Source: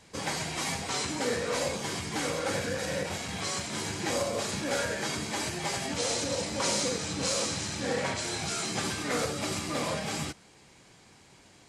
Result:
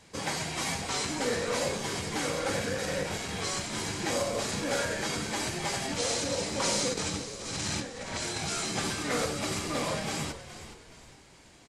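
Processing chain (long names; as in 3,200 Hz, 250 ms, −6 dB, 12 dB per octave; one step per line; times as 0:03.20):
0:06.93–0:08.38: compressor whose output falls as the input rises −35 dBFS, ratio −0.5
echo with shifted repeats 419 ms, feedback 37%, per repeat −78 Hz, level −12.5 dB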